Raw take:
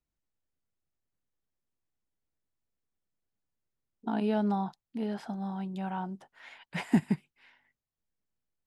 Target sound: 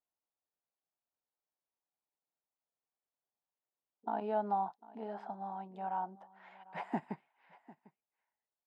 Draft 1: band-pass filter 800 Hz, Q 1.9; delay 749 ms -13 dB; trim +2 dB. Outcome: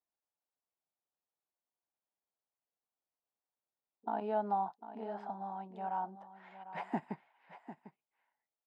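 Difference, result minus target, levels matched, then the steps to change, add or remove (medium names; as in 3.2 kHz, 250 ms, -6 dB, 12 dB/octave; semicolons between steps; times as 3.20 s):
echo-to-direct +7.5 dB
change: delay 749 ms -20.5 dB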